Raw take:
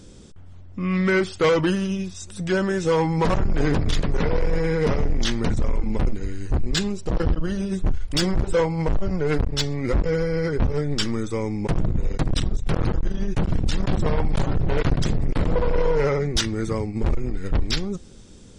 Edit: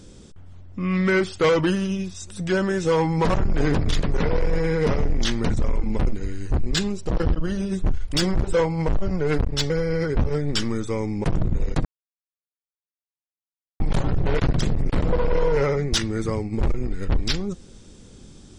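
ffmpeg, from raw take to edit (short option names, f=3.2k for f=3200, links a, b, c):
-filter_complex "[0:a]asplit=4[a][b][c][d];[a]atrim=end=9.702[e];[b]atrim=start=10.128:end=12.28,asetpts=PTS-STARTPTS,afade=t=out:st=2.148:d=0.004:c=hsin[f];[c]atrim=start=12.28:end=14.23,asetpts=PTS-STARTPTS,volume=0[g];[d]atrim=start=14.23,asetpts=PTS-STARTPTS,afade=t=in:d=0.004:c=hsin[h];[f][g][h]concat=n=3:v=0:a=1[i];[e][i]acrossfade=d=0.004:c1=hsin:c2=hsin"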